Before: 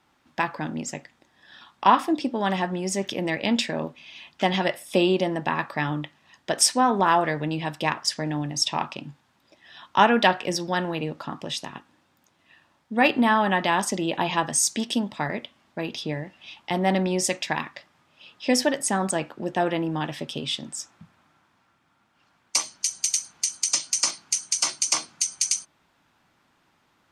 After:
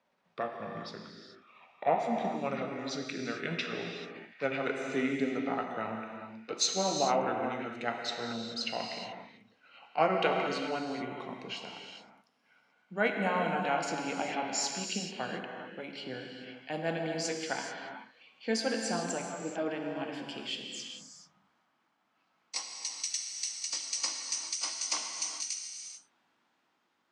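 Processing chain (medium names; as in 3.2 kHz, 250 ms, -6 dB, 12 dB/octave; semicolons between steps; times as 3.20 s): pitch bend over the whole clip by -6.5 st ending unshifted; three-band isolator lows -18 dB, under 190 Hz, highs -12 dB, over 7.8 kHz; gated-style reverb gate 460 ms flat, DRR 2 dB; trim -8.5 dB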